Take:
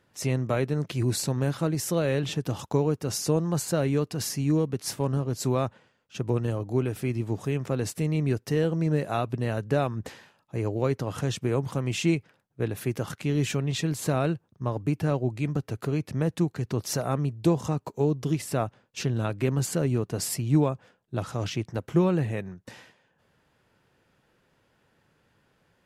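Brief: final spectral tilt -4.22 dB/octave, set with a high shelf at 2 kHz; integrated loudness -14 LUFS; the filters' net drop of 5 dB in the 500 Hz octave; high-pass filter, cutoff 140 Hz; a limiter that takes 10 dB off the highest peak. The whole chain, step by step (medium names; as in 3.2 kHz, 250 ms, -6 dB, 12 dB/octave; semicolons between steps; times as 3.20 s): high-pass 140 Hz; peaking EQ 500 Hz -7 dB; treble shelf 2 kHz +8.5 dB; trim +16.5 dB; peak limiter -2.5 dBFS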